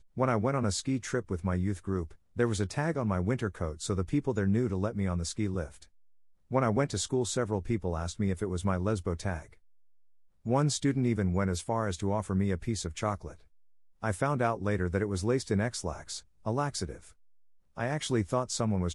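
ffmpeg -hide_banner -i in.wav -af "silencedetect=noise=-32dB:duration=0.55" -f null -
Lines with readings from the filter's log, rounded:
silence_start: 5.65
silence_end: 6.53 | silence_duration: 0.88
silence_start: 9.38
silence_end: 10.46 | silence_duration: 1.08
silence_start: 13.27
silence_end: 14.04 | silence_duration: 0.76
silence_start: 16.92
silence_end: 17.78 | silence_duration: 0.86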